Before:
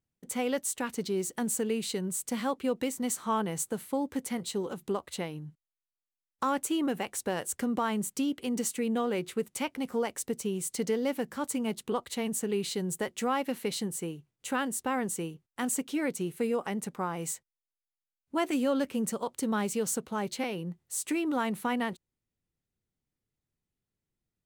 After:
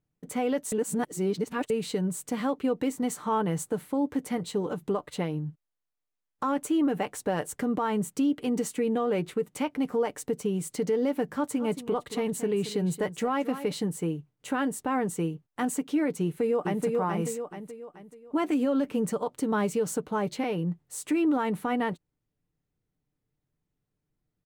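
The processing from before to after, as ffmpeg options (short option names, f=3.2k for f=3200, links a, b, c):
-filter_complex "[0:a]asettb=1/sr,asplit=3[a][b][c];[a]atrim=end=11.334[d];[b]atrim=start=11.33:end=13.72,asetpts=PTS-STARTPTS,afade=t=in:d=0.004:c=qsin,afade=t=out:st=2.386:d=0.004:c=qsin,aecho=1:1:224:0.188,atrim=end_sample=105399[e];[c]atrim=start=13.716[f];[d][e]acrossfade=d=0.004:c1=hsin:c2=qsin[g];[g][f]acrossfade=d=0.004:c1=qsin:c2=hsin,asplit=2[h][i];[i]afade=t=in:st=16.22:d=0.01,afade=t=out:st=16.85:d=0.01,aecho=0:1:430|860|1290|1720|2150:0.668344|0.267338|0.106935|0.042774|0.0171096[j];[h][j]amix=inputs=2:normalize=0,asplit=3[k][l][m];[k]atrim=end=0.722[n];[l]atrim=start=0.718:end=1.702,asetpts=PTS-STARTPTS,areverse[o];[m]atrim=start=1.698[p];[n][o]acrossfade=d=0.004:c1=hsin:c2=hsin[q];[q][p]acrossfade=d=0.004:c1=hsin:c2=hsin,highshelf=f=2.2k:g=-11.5,aecho=1:1:6.7:0.4,alimiter=level_in=1dB:limit=-24dB:level=0:latency=1:release=86,volume=-1dB,volume=6dB"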